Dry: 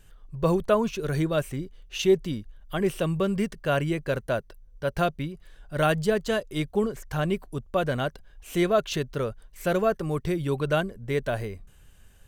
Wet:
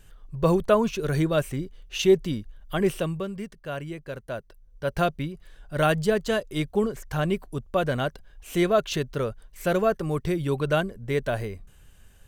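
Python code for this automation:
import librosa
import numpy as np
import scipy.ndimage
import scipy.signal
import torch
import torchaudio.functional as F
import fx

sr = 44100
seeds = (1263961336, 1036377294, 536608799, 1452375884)

y = fx.gain(x, sr, db=fx.line((2.92, 2.0), (3.33, -8.5), (4.15, -8.5), (4.95, 1.0)))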